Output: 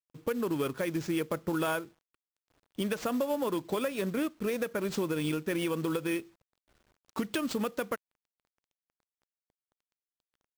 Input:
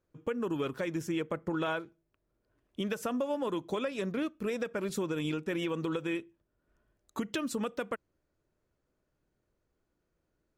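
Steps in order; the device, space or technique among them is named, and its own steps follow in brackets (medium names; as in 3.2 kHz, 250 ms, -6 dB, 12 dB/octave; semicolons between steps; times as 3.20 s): early companding sampler (sample-rate reducer 12 kHz, jitter 0%; companded quantiser 6-bit); trim +2 dB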